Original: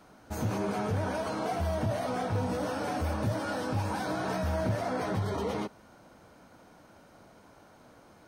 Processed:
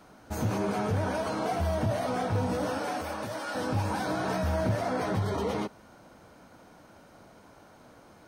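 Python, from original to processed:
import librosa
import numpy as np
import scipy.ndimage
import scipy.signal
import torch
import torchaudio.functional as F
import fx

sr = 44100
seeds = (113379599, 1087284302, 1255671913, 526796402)

y = fx.highpass(x, sr, hz=fx.line((2.78, 300.0), (3.54, 970.0)), slope=6, at=(2.78, 3.54), fade=0.02)
y = y * librosa.db_to_amplitude(2.0)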